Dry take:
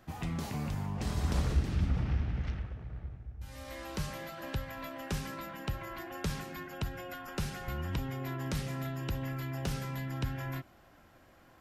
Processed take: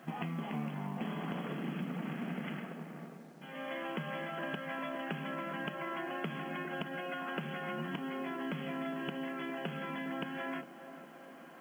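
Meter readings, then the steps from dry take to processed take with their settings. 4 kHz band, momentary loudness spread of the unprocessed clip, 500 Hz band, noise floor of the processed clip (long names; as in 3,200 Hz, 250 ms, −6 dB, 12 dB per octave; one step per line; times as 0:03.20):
−1.5 dB, 11 LU, +2.5 dB, −52 dBFS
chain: brick-wall band-pass 140–3,400 Hz
downward compressor 8 to 1, threshold −42 dBFS, peak gain reduction 11 dB
tuned comb filter 230 Hz, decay 0.18 s, harmonics odd, mix 60%
log-companded quantiser 8 bits
feedback echo with a band-pass in the loop 406 ms, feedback 69%, band-pass 520 Hz, level −11 dB
level +13.5 dB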